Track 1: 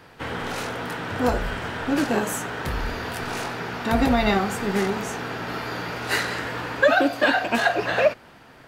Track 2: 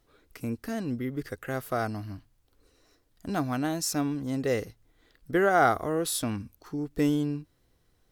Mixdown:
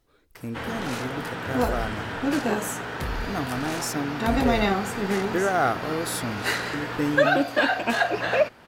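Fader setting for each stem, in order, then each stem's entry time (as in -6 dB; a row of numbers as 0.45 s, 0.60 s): -2.0 dB, -1.0 dB; 0.35 s, 0.00 s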